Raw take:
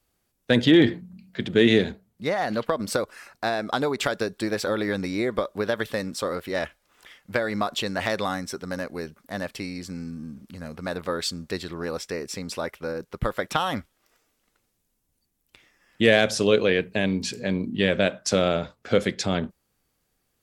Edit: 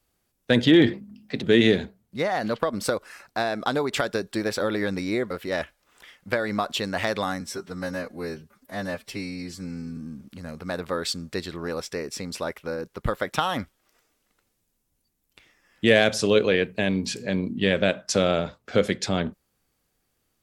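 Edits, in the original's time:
0.93–1.5 speed 113%
5.37–6.33 cut
8.43–10.14 stretch 1.5×

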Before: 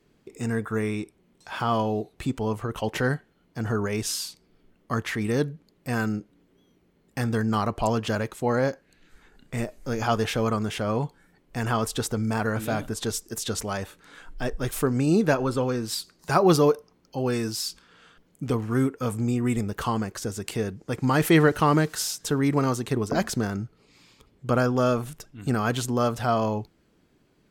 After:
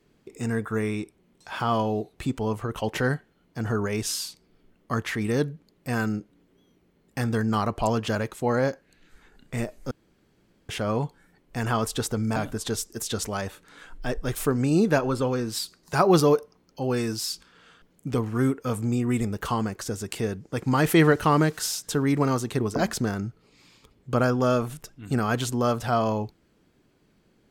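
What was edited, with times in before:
9.91–10.69 room tone
12.36–12.72 cut

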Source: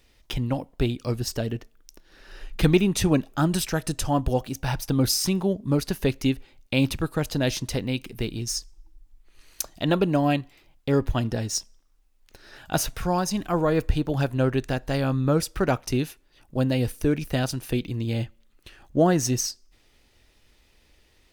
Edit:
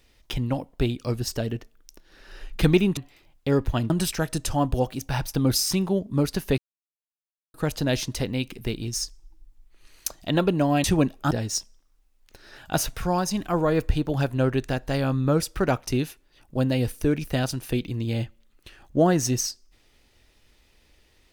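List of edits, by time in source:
2.97–3.44 swap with 10.38–11.31
6.12–7.08 mute

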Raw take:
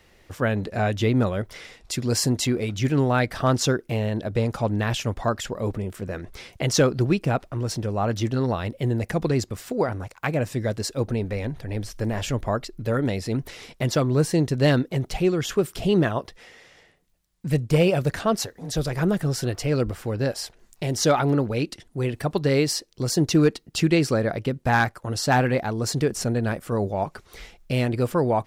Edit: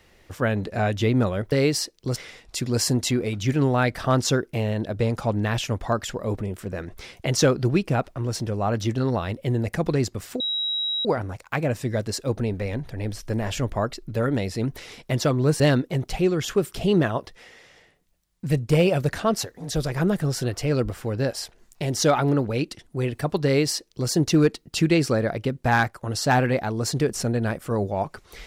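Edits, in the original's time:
9.76 add tone 3850 Hz -23 dBFS 0.65 s
14.31–14.61 cut
22.46–23.1 copy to 1.52

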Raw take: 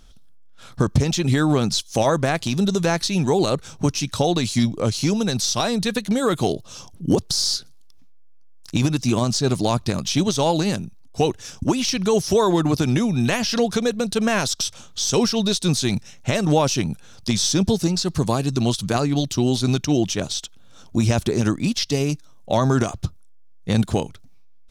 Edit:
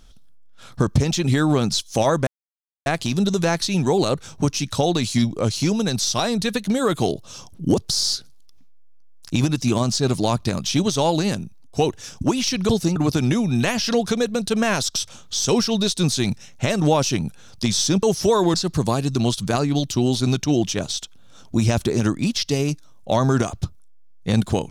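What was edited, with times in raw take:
2.27 insert silence 0.59 s
12.1–12.61 swap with 17.68–17.95

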